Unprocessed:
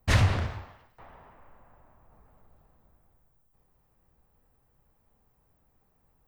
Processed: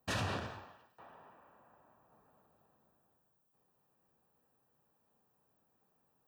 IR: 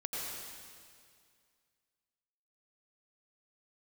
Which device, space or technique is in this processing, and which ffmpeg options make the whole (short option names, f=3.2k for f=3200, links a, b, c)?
PA system with an anti-feedback notch: -af "highpass=180,asuperstop=centerf=2100:order=4:qfactor=6,alimiter=limit=-22dB:level=0:latency=1:release=73,volume=-4.5dB"